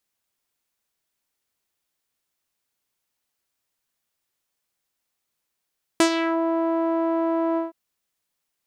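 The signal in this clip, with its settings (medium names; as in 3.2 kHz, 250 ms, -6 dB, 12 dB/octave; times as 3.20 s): synth note saw E4 12 dB/octave, low-pass 870 Hz, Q 1.7, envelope 3.5 oct, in 0.37 s, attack 1.6 ms, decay 0.09 s, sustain -9.5 dB, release 0.15 s, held 1.57 s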